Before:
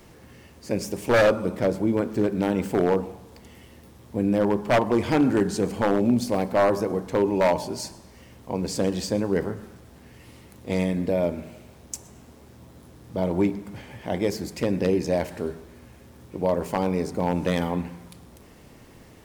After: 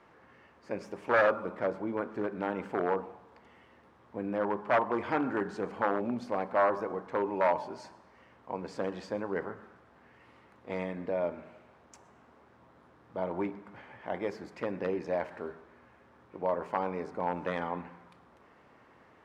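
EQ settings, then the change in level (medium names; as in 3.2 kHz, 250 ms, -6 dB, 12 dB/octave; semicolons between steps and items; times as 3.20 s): band-pass filter 1.3 kHz, Q 1.4; tilt EQ -2 dB/octave; 0.0 dB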